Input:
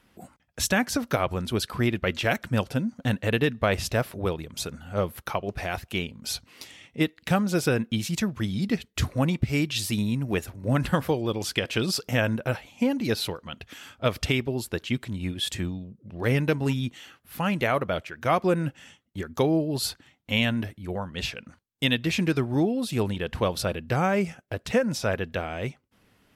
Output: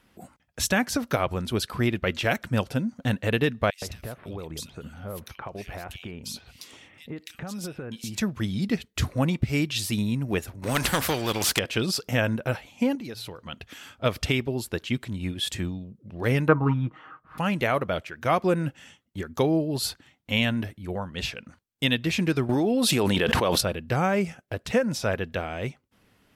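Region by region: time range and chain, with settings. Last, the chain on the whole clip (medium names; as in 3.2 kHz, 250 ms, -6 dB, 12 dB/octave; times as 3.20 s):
3.70–8.18 s: compression 12:1, threshold -31 dBFS + bands offset in time highs, lows 120 ms, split 2.3 kHz
10.62–11.59 s: waveshaping leveller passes 1 + spectrum-flattening compressor 2:1
12.95–13.46 s: de-hum 57.4 Hz, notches 2 + compression 4:1, threshold -35 dBFS
16.48–17.38 s: resonant low-pass 1.2 kHz, resonance Q 5.7 + comb 6.4 ms, depth 59%
22.49–23.61 s: high-pass 300 Hz 6 dB/octave + level flattener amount 100%
whole clip: none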